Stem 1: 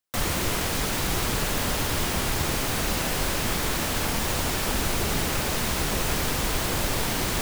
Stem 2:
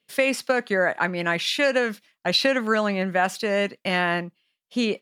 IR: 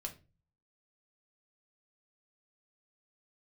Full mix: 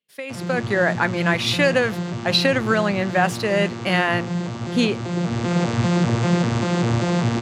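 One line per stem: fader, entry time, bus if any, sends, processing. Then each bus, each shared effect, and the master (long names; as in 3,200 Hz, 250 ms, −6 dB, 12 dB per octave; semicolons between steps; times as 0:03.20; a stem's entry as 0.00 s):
−1.5 dB, 0.15 s, send −11.5 dB, vocoder with an arpeggio as carrier bare fifth, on A#2, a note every 196 ms; automatic ducking −11 dB, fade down 0.50 s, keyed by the second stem
−13.0 dB, 0.00 s, no send, automatic gain control gain up to 10.5 dB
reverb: on, RT60 0.30 s, pre-delay 3 ms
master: automatic gain control gain up to 9.5 dB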